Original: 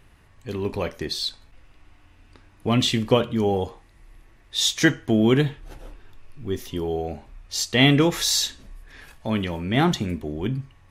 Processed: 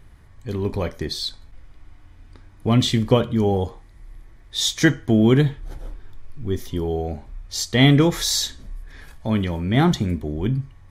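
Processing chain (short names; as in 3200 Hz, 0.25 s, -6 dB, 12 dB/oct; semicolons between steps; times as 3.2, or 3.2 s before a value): low shelf 170 Hz +8.5 dB; notch 2700 Hz, Q 6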